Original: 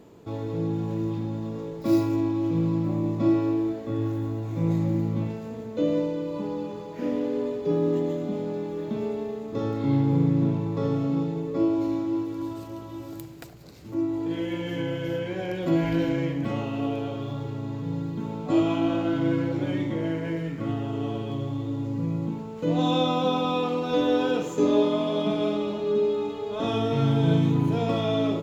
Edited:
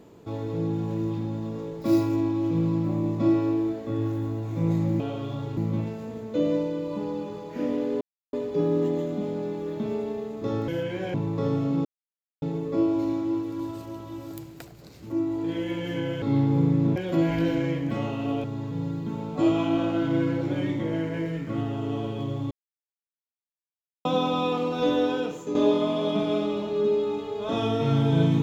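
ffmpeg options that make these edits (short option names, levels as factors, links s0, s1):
-filter_complex "[0:a]asplit=13[s0][s1][s2][s3][s4][s5][s6][s7][s8][s9][s10][s11][s12];[s0]atrim=end=5.002[s13];[s1]atrim=start=16.978:end=17.552[s14];[s2]atrim=start=4.998:end=7.44,asetpts=PTS-STARTPTS,afade=t=out:st=2.438:d=0.004:c=hsin,apad=pad_dur=0.32[s15];[s3]atrim=start=7.44:end=9.792,asetpts=PTS-STARTPTS,afade=t=in:d=0.004:c=hsin[s16];[s4]atrim=start=15.038:end=15.502[s17];[s5]atrim=start=10.528:end=11.24,asetpts=PTS-STARTPTS,afade=t=out:st=0.708:d=0.004:c=hsin,apad=pad_dur=0.57[s18];[s6]atrim=start=11.24:end=15.042,asetpts=PTS-STARTPTS,afade=t=in:d=0.004:c=hsin[s19];[s7]atrim=start=9.788:end=10.532[s20];[s8]atrim=start=15.498:end=16.982[s21];[s9]atrim=start=17.548:end=21.62,asetpts=PTS-STARTPTS,afade=t=out:st=4.068:d=0.004:c=hsin[s22];[s10]atrim=start=21.62:end=23.16,asetpts=PTS-STARTPTS,volume=0[s23];[s11]atrim=start=23.16:end=24.66,asetpts=PTS-STARTPTS,afade=t=in:d=0.004:c=hsin,afade=t=out:st=0.86:d=0.64:silence=0.334965[s24];[s12]atrim=start=24.66,asetpts=PTS-STARTPTS,afade=t=in:d=0.004:c=hsin:silence=0.334965[s25];[s13][s14]acrossfade=d=0.004:c1=hsin:c2=hsin[s26];[s15][s16]concat=n=2:v=0:a=1[s27];[s26][s27]acrossfade=d=0.004:c1=hsin:c2=hsin[s28];[s28][s17]acrossfade=d=0.004:c1=hsin:c2=hsin[s29];[s18][s19]concat=n=2:v=0:a=1[s30];[s29][s30]acrossfade=d=0.004:c1=hsin:c2=hsin[s31];[s31][s20]acrossfade=d=0.004:c1=hsin:c2=hsin[s32];[s32][s21]acrossfade=d=0.004:c1=hsin:c2=hsin[s33];[s22][s23][s24][s25]concat=n=4:v=0:a=1[s34];[s33][s34]acrossfade=d=0.004:c1=hsin:c2=hsin"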